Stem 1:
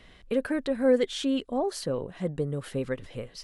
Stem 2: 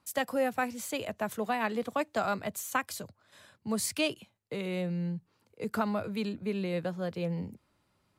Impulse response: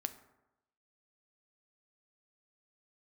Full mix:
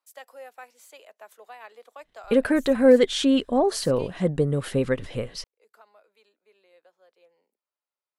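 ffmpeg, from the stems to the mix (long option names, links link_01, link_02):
-filter_complex "[0:a]agate=range=-29dB:threshold=-48dB:ratio=16:detection=peak,acontrast=41,adelay=2000,volume=1.5dB[link_01];[1:a]highpass=frequency=450:width=0.5412,highpass=frequency=450:width=1.3066,volume=-12.5dB,afade=type=out:start_time=3.61:duration=0.77:silence=0.334965[link_02];[link_01][link_02]amix=inputs=2:normalize=0"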